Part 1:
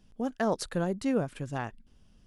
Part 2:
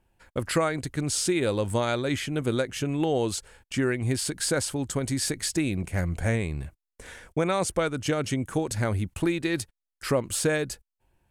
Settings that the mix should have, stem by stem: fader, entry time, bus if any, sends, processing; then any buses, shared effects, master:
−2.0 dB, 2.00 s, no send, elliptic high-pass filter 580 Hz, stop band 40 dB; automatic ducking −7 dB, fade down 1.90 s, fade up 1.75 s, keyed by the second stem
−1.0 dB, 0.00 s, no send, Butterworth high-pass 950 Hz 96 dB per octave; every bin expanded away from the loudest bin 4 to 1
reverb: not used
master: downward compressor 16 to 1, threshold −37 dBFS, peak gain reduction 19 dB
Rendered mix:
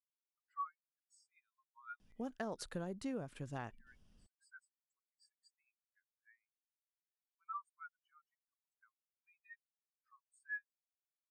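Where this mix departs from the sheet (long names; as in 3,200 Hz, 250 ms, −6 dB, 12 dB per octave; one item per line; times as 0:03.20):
stem 1: missing elliptic high-pass filter 580 Hz, stop band 40 dB
stem 2 −1.0 dB → −12.5 dB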